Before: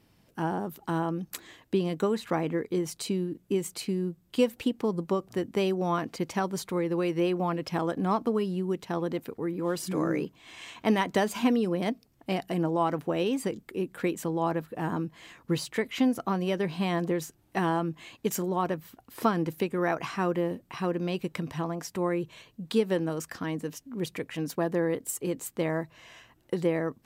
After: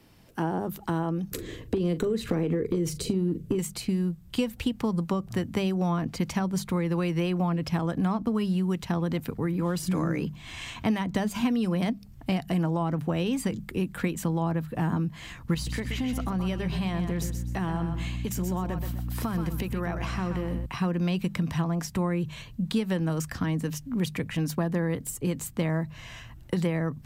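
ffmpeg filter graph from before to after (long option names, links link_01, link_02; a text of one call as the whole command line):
ffmpeg -i in.wav -filter_complex "[0:a]asettb=1/sr,asplit=3[link_01][link_02][link_03];[link_01]atrim=end=1.314[link_04];[link_02]atrim=start=1.31:end=3.59,asetpts=PTS-STARTPTS,afade=type=in:duration=0.004:curve=qsin,afade=type=out:start_time=2.276:duration=0.004:curve=qsin,lowshelf=frequency=590:width_type=q:width=3:gain=9.5,acompressor=threshold=-21dB:ratio=6:attack=3.2:release=140:knee=1:detection=peak,asplit=2[link_05][link_06];[link_06]adelay=40,volume=-13.5dB[link_07];[link_05][link_07]amix=inputs=2:normalize=0,atrim=end_sample=100548[link_08];[link_03]atrim=start=3.586[link_09];[link_04][link_08]acrossfade=duration=0.004:curve1=hsin:curve2=qsin[link_10];[link_10][link_09]acrossfade=duration=0.004:curve1=qsin:curve2=hsin,asettb=1/sr,asplit=3[link_11][link_12][link_13];[link_11]atrim=end=15.544[link_14];[link_12]atrim=start=15.54:end=20.66,asetpts=PTS-STARTPTS,afade=type=in:duration=0.004:curve=qsin,afade=type=out:start_time=5.116:duration=0.004:curve=qsin,aeval=exprs='val(0)+0.01*(sin(2*PI*60*n/s)+sin(2*PI*2*60*n/s)/2+sin(2*PI*3*60*n/s)/3+sin(2*PI*4*60*n/s)/4+sin(2*PI*5*60*n/s)/5)':channel_layout=same,acompressor=threshold=-35dB:ratio=2.5:attack=3.2:release=140:knee=1:detection=peak,aecho=1:1:126|252|378:0.355|0.106|0.0319,atrim=end_sample=225792[link_15];[link_13]atrim=start=20.656[link_16];[link_14][link_15]acrossfade=duration=0.004:curve1=hsin:curve2=qsin[link_17];[link_17][link_16]acrossfade=duration=0.004:curve1=qsin:curve2=hsin,bandreject=frequency=50:width_type=h:width=6,bandreject=frequency=100:width_type=h:width=6,bandreject=frequency=150:width_type=h:width=6,bandreject=frequency=200:width_type=h:width=6,asubboost=boost=10:cutoff=120,acrossover=split=190|620[link_18][link_19][link_20];[link_18]acompressor=threshold=-41dB:ratio=4[link_21];[link_19]acompressor=threshold=-35dB:ratio=4[link_22];[link_20]acompressor=threshold=-41dB:ratio=4[link_23];[link_21][link_22][link_23]amix=inputs=3:normalize=0,volume=6.5dB" out.wav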